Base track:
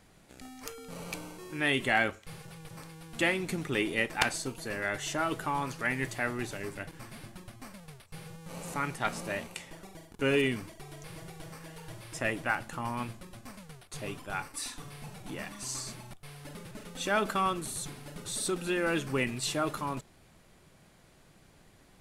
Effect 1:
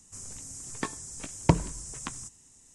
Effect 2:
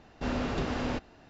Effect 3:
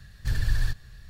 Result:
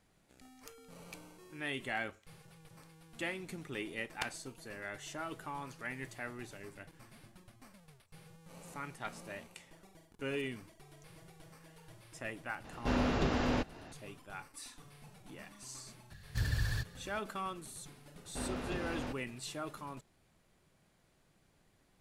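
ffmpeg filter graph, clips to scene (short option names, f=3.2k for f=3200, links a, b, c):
-filter_complex "[2:a]asplit=2[a][b];[0:a]volume=-11dB[c];[a]acompressor=mode=upward:threshold=-43dB:ratio=2.5:attack=3.2:release=140:knee=2.83:detection=peak[d];[3:a]highpass=68[e];[d]atrim=end=1.29,asetpts=PTS-STARTPTS,afade=t=in:d=0.004:c=hsin,afade=t=out:st=1.286:d=0.004:c=hsin,adelay=12640[f];[e]atrim=end=1.09,asetpts=PTS-STARTPTS,volume=-3dB,afade=t=in:d=0.004:c=hsin,afade=t=out:st=1.086:d=0.004:c=hsin,adelay=16100[g];[b]atrim=end=1.29,asetpts=PTS-STARTPTS,volume=-8.5dB,afade=t=in:d=0.004:c=hsin,afade=t=out:st=1.286:d=0.004:c=hsin,adelay=18140[h];[c][f][g][h]amix=inputs=4:normalize=0"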